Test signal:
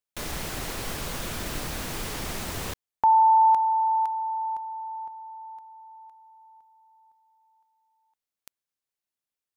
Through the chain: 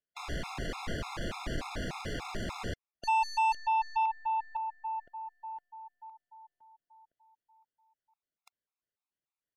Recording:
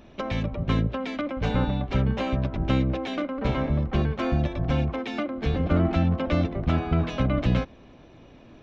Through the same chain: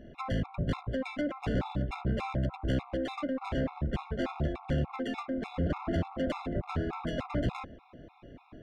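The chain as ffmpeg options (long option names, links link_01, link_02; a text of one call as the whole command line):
ffmpeg -i in.wav -af "adynamicsmooth=sensitivity=3.5:basefreq=3400,aeval=exprs='(tanh(20*val(0)+0.15)-tanh(0.15))/20':channel_layout=same,afftfilt=real='re*gt(sin(2*PI*3.4*pts/sr)*(1-2*mod(floor(b*sr/1024/690),2)),0)':imag='im*gt(sin(2*PI*3.4*pts/sr)*(1-2*mod(floor(b*sr/1024/690),2)),0)':win_size=1024:overlap=0.75,volume=1.5dB" out.wav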